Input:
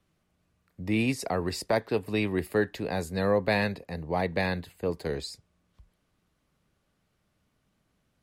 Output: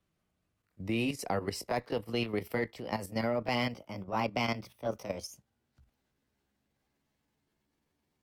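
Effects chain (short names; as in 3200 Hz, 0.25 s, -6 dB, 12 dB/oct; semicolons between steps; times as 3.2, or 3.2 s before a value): gliding pitch shift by +7 st starting unshifted; added harmonics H 4 -27 dB, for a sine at -13.5 dBFS; level quantiser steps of 10 dB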